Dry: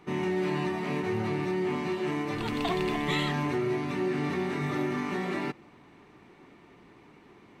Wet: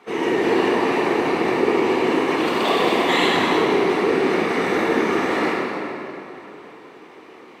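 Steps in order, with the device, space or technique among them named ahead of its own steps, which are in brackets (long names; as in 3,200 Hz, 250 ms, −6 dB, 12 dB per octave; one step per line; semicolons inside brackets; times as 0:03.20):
whispering ghost (random phases in short frames; high-pass filter 330 Hz 12 dB per octave; convolution reverb RT60 3.0 s, pre-delay 20 ms, DRR −4.5 dB)
level +7 dB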